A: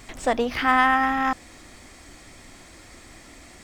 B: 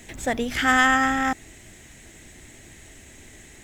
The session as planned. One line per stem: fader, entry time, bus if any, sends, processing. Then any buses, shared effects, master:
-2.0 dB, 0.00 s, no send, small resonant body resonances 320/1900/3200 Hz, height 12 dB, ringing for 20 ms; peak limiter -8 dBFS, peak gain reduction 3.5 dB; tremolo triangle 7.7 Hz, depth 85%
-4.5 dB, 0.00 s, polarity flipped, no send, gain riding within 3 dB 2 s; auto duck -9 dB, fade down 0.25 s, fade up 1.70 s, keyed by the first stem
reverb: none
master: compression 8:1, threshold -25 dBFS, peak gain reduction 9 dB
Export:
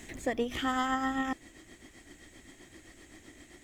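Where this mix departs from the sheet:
stem A -2.0 dB -> -9.5 dB; stem B: polarity flipped

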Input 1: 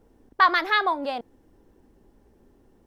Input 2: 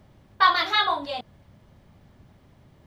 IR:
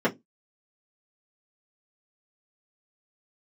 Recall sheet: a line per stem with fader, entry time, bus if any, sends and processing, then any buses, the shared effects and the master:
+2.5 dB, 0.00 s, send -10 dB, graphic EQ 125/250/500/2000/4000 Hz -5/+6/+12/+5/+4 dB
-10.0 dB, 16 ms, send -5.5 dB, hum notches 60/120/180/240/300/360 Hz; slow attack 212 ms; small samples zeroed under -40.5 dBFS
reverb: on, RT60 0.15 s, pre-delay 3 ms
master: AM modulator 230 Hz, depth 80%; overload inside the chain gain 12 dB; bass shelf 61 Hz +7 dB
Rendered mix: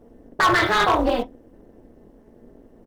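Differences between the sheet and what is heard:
stem 1: missing graphic EQ 125/250/500/2000/4000 Hz -5/+6/+12/+5/+4 dB; stem 2 -10.0 dB -> -2.0 dB

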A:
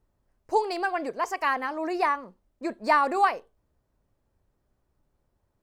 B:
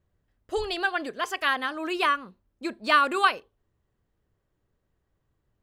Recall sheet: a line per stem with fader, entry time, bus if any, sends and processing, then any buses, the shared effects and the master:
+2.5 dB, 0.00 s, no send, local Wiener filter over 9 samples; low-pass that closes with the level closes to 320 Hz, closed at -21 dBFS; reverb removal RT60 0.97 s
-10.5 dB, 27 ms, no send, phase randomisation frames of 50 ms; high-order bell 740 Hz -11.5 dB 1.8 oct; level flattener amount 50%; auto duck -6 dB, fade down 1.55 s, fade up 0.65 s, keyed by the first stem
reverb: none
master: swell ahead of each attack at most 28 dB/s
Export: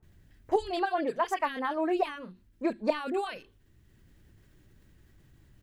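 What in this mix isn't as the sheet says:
stem B: missing phase randomisation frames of 50 ms; master: missing swell ahead of each attack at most 28 dB/s

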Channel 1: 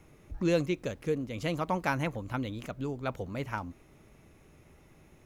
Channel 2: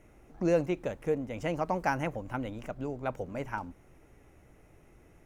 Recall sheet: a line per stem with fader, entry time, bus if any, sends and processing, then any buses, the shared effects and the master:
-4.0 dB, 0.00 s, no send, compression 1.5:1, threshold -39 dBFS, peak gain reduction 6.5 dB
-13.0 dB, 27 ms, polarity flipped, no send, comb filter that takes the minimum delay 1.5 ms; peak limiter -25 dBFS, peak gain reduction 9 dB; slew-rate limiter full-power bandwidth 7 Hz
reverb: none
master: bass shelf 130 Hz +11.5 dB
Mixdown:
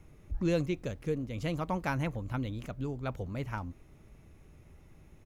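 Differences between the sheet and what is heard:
stem 1: missing compression 1.5:1, threshold -39 dBFS, peak gain reduction 6.5 dB; stem 2 -13.0 dB -> -24.5 dB

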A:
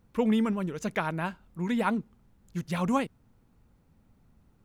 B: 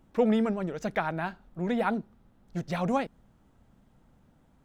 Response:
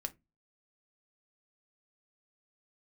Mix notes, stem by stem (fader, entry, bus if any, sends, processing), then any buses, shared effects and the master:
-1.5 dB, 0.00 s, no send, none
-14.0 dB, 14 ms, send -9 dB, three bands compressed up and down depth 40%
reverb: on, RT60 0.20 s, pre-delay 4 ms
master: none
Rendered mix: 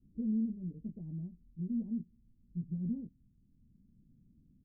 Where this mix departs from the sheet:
stem A -1.5 dB -> -8.0 dB; master: extra inverse Chebyshev low-pass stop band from 1.2 kHz, stop band 70 dB

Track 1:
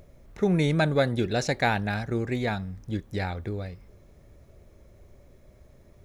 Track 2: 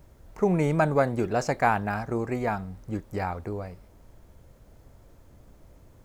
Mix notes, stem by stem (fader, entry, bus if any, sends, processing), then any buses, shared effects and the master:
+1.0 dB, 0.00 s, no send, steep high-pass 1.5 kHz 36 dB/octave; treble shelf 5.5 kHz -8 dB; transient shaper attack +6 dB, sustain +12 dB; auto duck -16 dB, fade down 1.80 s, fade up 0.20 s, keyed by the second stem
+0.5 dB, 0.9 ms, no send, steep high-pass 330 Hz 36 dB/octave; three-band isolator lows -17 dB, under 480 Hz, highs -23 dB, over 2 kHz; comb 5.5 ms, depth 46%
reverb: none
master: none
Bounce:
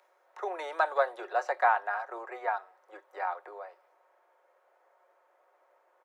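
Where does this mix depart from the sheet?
stem 1 +1.0 dB -> -7.5 dB; master: extra high-pass 600 Hz 12 dB/octave

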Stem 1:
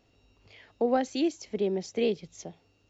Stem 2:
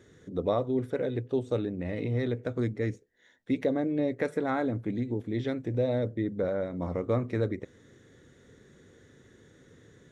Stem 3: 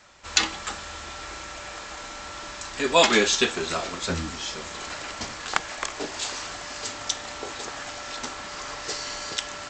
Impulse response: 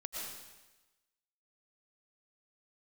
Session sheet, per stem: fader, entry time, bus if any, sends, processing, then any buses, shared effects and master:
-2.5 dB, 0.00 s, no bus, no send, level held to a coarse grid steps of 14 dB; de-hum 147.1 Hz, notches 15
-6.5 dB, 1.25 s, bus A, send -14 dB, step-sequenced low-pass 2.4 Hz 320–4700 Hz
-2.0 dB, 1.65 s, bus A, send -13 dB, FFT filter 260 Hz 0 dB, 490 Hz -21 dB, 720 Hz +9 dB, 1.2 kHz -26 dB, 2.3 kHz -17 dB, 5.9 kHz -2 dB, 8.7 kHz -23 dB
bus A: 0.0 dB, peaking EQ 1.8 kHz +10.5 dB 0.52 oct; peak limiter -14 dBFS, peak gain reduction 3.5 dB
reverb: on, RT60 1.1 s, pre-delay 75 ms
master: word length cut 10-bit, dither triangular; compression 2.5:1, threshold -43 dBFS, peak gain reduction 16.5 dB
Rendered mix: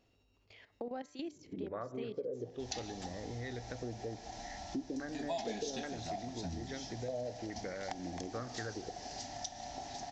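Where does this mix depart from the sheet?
stem 3: entry 1.65 s -> 2.35 s; master: missing word length cut 10-bit, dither triangular

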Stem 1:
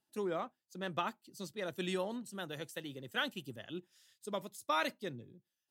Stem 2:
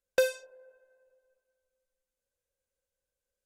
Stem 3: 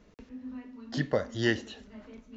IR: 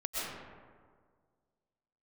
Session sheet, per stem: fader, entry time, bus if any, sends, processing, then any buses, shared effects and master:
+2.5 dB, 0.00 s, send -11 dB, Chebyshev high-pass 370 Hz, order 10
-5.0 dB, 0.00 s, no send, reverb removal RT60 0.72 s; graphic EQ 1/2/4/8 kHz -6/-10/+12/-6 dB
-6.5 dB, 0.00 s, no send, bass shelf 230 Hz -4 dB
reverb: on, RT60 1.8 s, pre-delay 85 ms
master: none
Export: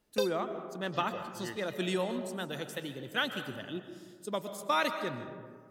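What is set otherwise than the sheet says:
stem 1: missing Chebyshev high-pass 370 Hz, order 10; stem 3 -6.5 dB -> -15.5 dB

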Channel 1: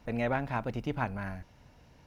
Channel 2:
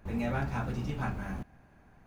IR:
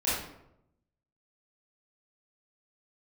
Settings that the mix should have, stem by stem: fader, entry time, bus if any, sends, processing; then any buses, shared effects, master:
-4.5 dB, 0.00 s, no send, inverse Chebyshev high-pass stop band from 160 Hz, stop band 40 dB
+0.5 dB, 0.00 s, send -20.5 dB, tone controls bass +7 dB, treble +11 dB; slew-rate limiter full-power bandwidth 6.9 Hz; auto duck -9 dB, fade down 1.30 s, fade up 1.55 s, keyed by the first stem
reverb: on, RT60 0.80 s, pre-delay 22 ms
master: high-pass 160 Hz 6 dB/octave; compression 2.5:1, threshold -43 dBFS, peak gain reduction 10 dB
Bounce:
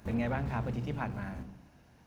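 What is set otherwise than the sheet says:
stem 1: missing inverse Chebyshev high-pass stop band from 160 Hz, stop band 40 dB; master: missing compression 2.5:1, threshold -43 dBFS, peak gain reduction 10 dB

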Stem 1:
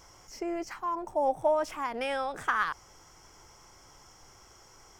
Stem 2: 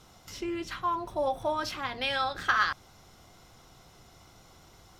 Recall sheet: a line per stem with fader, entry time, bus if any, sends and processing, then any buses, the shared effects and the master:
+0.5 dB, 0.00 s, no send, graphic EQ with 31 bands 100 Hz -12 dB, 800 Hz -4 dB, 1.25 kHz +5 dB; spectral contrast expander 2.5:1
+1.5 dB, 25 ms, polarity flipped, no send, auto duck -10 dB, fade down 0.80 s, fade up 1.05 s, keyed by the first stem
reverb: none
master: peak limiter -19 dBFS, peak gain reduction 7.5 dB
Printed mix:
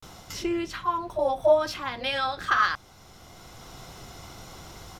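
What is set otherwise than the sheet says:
stem 2 +1.5 dB -> +11.5 dB; master: missing peak limiter -19 dBFS, peak gain reduction 7.5 dB

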